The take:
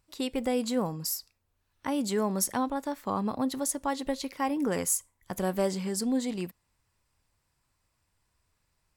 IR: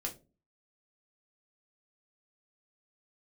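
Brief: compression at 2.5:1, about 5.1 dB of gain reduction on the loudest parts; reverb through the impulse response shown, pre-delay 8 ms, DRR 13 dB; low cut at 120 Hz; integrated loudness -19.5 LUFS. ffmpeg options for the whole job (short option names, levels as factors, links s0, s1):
-filter_complex "[0:a]highpass=120,acompressor=threshold=0.0282:ratio=2.5,asplit=2[s0][s1];[1:a]atrim=start_sample=2205,adelay=8[s2];[s1][s2]afir=irnorm=-1:irlink=0,volume=0.211[s3];[s0][s3]amix=inputs=2:normalize=0,volume=5.31"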